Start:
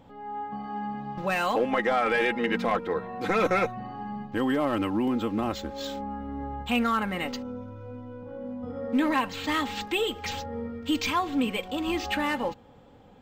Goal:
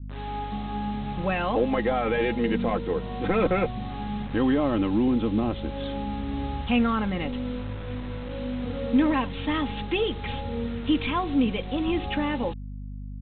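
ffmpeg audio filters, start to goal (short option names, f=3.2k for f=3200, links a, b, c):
-af "aresample=8000,acrusher=bits=6:mix=0:aa=0.000001,aresample=44100,lowshelf=f=400:g=6,aeval=exprs='val(0)+0.0178*(sin(2*PI*50*n/s)+sin(2*PI*2*50*n/s)/2+sin(2*PI*3*50*n/s)/3+sin(2*PI*4*50*n/s)/4+sin(2*PI*5*50*n/s)/5)':c=same,adynamicequalizer=threshold=0.0112:dfrequency=1500:dqfactor=0.76:tfrequency=1500:tqfactor=0.76:attack=5:release=100:ratio=0.375:range=3.5:mode=cutabove:tftype=bell"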